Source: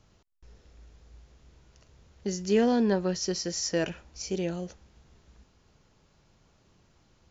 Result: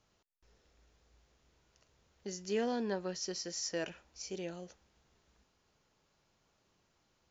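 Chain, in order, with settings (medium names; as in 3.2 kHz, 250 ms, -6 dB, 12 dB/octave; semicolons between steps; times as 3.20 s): bass shelf 250 Hz -10.5 dB; trim -7 dB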